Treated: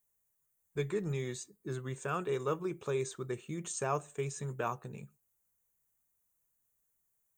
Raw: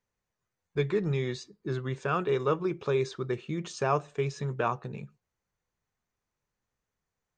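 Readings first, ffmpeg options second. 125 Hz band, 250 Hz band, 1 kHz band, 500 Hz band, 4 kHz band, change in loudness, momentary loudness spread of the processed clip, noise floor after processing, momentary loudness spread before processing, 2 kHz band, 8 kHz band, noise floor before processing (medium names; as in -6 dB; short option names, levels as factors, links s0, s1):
-6.5 dB, -6.5 dB, -6.5 dB, -6.5 dB, -7.0 dB, -6.0 dB, 9 LU, -79 dBFS, 9 LU, -6.5 dB, +5.5 dB, under -85 dBFS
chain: -af "aexciter=amount=14.9:drive=4.1:freq=7300,volume=0.473"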